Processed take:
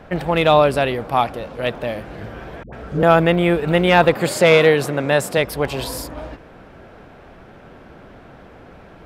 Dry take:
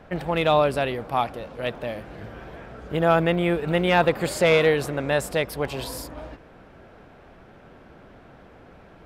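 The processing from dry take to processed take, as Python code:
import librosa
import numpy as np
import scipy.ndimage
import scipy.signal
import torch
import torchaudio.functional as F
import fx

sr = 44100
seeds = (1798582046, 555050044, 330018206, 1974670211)

y = fx.dispersion(x, sr, late='highs', ms=99.0, hz=530.0, at=(2.63, 3.03))
y = fx.highpass(y, sr, hz=96.0, slope=24, at=(4.15, 5.38))
y = y * 10.0 ** (6.0 / 20.0)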